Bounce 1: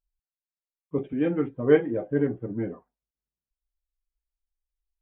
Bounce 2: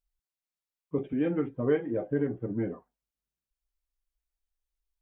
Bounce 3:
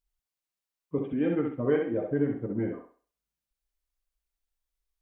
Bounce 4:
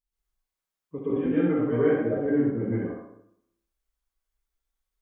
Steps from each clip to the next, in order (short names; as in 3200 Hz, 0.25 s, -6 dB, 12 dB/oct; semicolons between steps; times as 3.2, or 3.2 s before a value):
compressor 2.5:1, threshold -25 dBFS, peak gain reduction 9 dB
thinning echo 65 ms, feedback 34%, high-pass 230 Hz, level -4 dB
plate-style reverb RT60 0.74 s, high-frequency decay 0.5×, pre-delay 0.11 s, DRR -9.5 dB; gain -6.5 dB